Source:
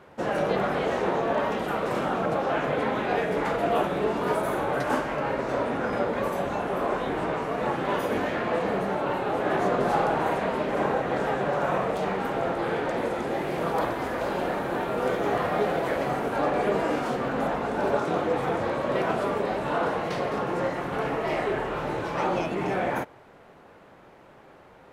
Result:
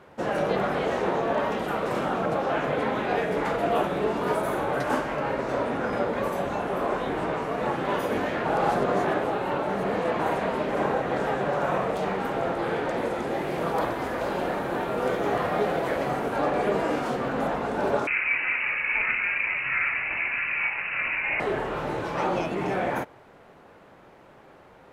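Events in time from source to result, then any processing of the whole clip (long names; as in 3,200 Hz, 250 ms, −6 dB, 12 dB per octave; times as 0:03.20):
0:08.45–0:10.19: reverse
0:18.07–0:21.40: voice inversion scrambler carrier 2,800 Hz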